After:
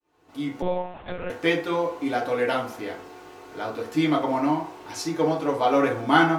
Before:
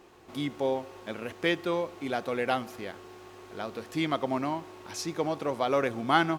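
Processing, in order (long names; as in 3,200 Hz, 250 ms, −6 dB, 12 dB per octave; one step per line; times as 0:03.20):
fade in at the beginning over 0.74 s
feedback delay network reverb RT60 0.5 s, low-frequency decay 0.7×, high-frequency decay 0.5×, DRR −3.5 dB
0:00.62–0:01.30: one-pitch LPC vocoder at 8 kHz 180 Hz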